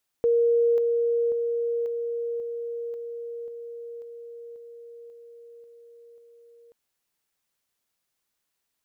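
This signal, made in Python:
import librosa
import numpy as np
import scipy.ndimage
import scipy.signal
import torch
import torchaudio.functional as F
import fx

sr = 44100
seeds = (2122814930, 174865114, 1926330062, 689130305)

y = fx.level_ladder(sr, hz=469.0, from_db=-17.5, step_db=-3.0, steps=12, dwell_s=0.54, gap_s=0.0)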